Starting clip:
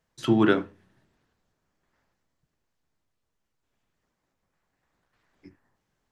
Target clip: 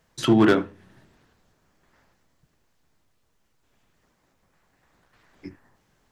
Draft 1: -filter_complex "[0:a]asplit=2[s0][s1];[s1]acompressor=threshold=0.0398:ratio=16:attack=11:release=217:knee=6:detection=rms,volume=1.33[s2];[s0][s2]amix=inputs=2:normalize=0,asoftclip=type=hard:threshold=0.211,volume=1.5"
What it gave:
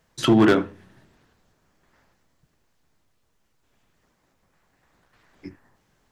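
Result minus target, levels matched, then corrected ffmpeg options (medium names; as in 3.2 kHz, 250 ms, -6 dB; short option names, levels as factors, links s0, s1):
compression: peak gain reduction -11 dB
-filter_complex "[0:a]asplit=2[s0][s1];[s1]acompressor=threshold=0.0106:ratio=16:attack=11:release=217:knee=6:detection=rms,volume=1.33[s2];[s0][s2]amix=inputs=2:normalize=0,asoftclip=type=hard:threshold=0.211,volume=1.5"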